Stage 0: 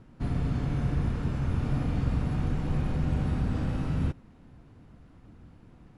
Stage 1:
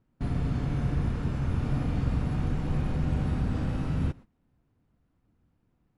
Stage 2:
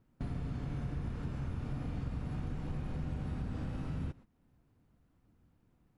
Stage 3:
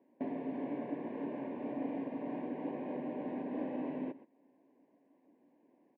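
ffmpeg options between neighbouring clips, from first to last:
-af "agate=range=-18dB:threshold=-42dB:ratio=16:detection=peak"
-af "acompressor=threshold=-41dB:ratio=2.5,volume=1dB"
-af "asuperstop=centerf=1300:order=4:qfactor=2.6,highpass=f=270:w=0.5412,highpass=f=270:w=1.3066,equalizer=f=270:t=q:w=4:g=8,equalizer=f=390:t=q:w=4:g=4,equalizer=f=590:t=q:w=4:g=9,equalizer=f=980:t=q:w=4:g=3,equalizer=f=1.5k:t=q:w=4:g=-5,lowpass=f=2.3k:w=0.5412,lowpass=f=2.3k:w=1.3066,aecho=1:1:128:0.0841,volume=4.5dB"

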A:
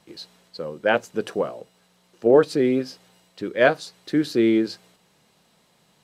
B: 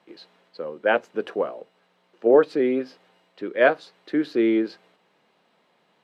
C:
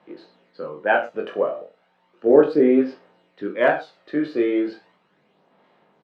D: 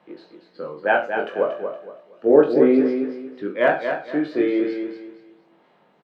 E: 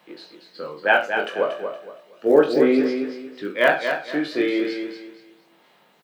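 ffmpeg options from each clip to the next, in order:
-filter_complex "[0:a]acrossover=split=220 3400:gain=0.112 1 0.112[a][b][c];[a][b][c]amix=inputs=3:normalize=0"
-af "aemphasis=mode=reproduction:type=75kf,aecho=1:1:20|42|66.2|92.82|122.1:0.631|0.398|0.251|0.158|0.1,aphaser=in_gain=1:out_gain=1:delay=1.7:decay=0.42:speed=0.35:type=sinusoidal"
-af "aecho=1:1:234|468|702|936:0.447|0.13|0.0376|0.0109"
-af "crystalizer=i=7.5:c=0,volume=-2.5dB"

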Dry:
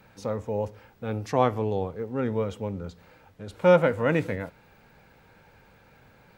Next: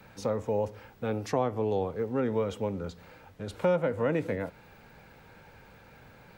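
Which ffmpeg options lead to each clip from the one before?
-filter_complex "[0:a]acrossover=split=230|800[a][b][c];[a]acompressor=threshold=-40dB:ratio=4[d];[b]acompressor=threshold=-29dB:ratio=4[e];[c]acompressor=threshold=-41dB:ratio=4[f];[d][e][f]amix=inputs=3:normalize=0,volume=2.5dB"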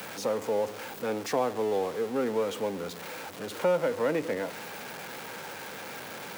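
-af "aeval=exprs='val(0)+0.5*0.0188*sgn(val(0))':c=same,highpass=250"

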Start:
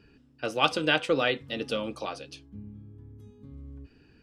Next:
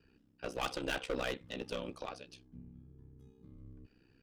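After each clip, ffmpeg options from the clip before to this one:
-af "aeval=exprs='0.447*(cos(1*acos(clip(val(0)/0.447,-1,1)))-cos(1*PI/2))+0.0631*(cos(6*acos(clip(val(0)/0.447,-1,1)))-cos(6*PI/2))':c=same,asoftclip=type=hard:threshold=-21dB,aeval=exprs='val(0)*sin(2*PI*32*n/s)':c=same,volume=-6dB"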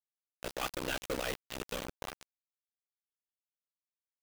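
-af "acrusher=bits=5:mix=0:aa=0.000001"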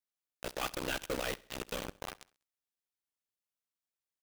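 -af "aecho=1:1:66|132|198:0.075|0.0367|0.018"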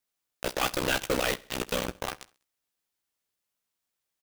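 -filter_complex "[0:a]asplit=2[a][b];[b]adelay=16,volume=-10.5dB[c];[a][c]amix=inputs=2:normalize=0,volume=8.5dB"

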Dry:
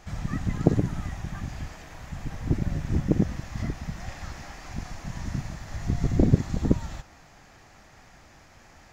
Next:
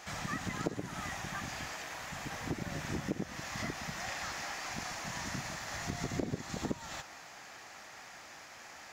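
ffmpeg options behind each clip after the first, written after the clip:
-af "highpass=f=870:p=1,acompressor=threshold=-39dB:ratio=4,volume=6dB"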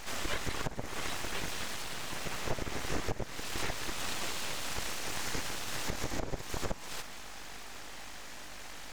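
-af "aeval=exprs='val(0)+0.00224*(sin(2*PI*50*n/s)+sin(2*PI*2*50*n/s)/2+sin(2*PI*3*50*n/s)/3+sin(2*PI*4*50*n/s)/4+sin(2*PI*5*50*n/s)/5)':c=same,aeval=exprs='abs(val(0))':c=same,alimiter=level_in=1.5dB:limit=-24dB:level=0:latency=1:release=298,volume=-1.5dB,volume=6dB"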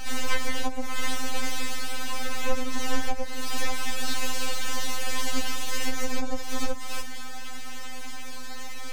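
-af "afftfilt=real='re*3.46*eq(mod(b,12),0)':imag='im*3.46*eq(mod(b,12),0)':win_size=2048:overlap=0.75,volume=8.5dB"

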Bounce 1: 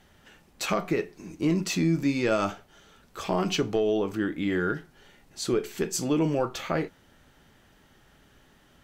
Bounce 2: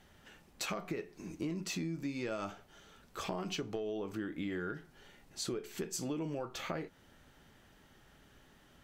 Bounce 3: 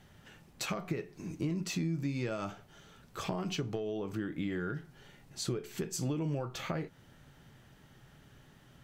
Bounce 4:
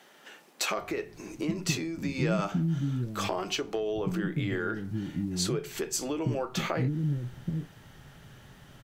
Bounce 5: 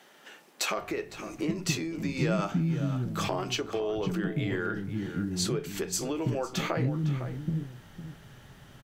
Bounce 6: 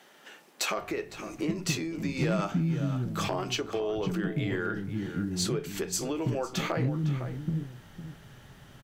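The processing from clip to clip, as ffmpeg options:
-af "acompressor=threshold=-32dB:ratio=6,volume=-3.5dB"
-af "equalizer=f=130:w=1.9:g=11,volume=1dB"
-filter_complex "[0:a]acrossover=split=280[a][b];[a]adelay=780[c];[c][b]amix=inputs=2:normalize=0,volume=7.5dB"
-filter_complex "[0:a]asplit=2[a][b];[b]adelay=507.3,volume=-10dB,highshelf=f=4k:g=-11.4[c];[a][c]amix=inputs=2:normalize=0"
-af "asoftclip=type=hard:threshold=-20dB"

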